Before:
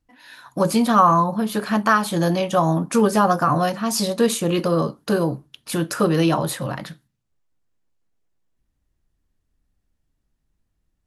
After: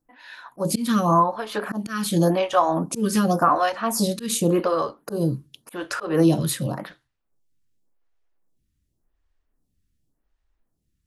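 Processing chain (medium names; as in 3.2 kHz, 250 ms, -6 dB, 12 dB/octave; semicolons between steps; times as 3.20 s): slow attack 163 ms; lamp-driven phase shifter 0.89 Hz; trim +2.5 dB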